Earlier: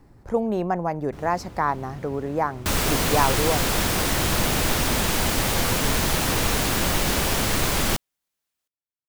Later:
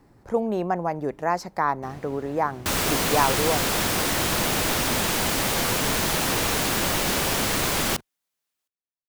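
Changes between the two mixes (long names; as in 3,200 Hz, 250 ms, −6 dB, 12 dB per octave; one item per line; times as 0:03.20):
first sound: entry +0.70 s
master: add low-shelf EQ 95 Hz −11 dB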